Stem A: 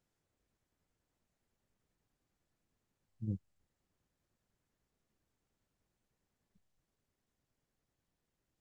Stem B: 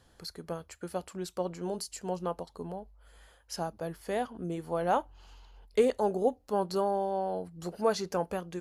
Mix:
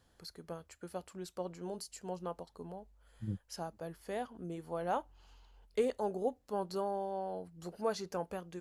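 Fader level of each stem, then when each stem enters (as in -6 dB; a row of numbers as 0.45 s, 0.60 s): -1.0 dB, -7.0 dB; 0.00 s, 0.00 s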